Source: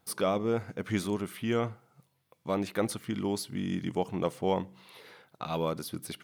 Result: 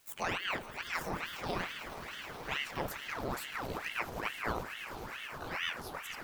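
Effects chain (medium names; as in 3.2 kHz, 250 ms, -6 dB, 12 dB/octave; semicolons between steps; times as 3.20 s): pitch bend over the whole clip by +10.5 st ending unshifted; in parallel at -10 dB: word length cut 8-bit, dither triangular; on the sum: echo with a slow build-up 107 ms, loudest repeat 8, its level -15.5 dB; ring modulator with a swept carrier 1.3 kHz, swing 90%, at 2.3 Hz; trim -6 dB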